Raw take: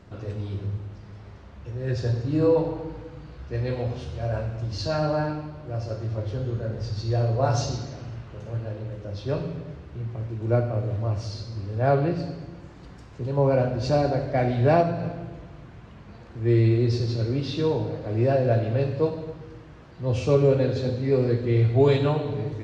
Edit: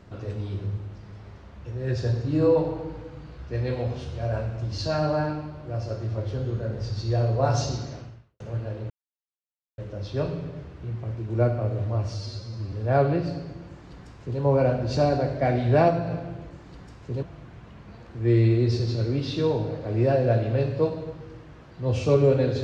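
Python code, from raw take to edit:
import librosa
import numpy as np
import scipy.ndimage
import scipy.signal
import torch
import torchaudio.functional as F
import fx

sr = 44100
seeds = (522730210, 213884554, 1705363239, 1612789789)

y = fx.edit(x, sr, fx.fade_out_span(start_s=7.96, length_s=0.44, curve='qua'),
    fx.insert_silence(at_s=8.9, length_s=0.88),
    fx.stretch_span(start_s=11.26, length_s=0.39, factor=1.5),
    fx.duplicate(start_s=12.61, length_s=0.72, to_s=15.43), tone=tone)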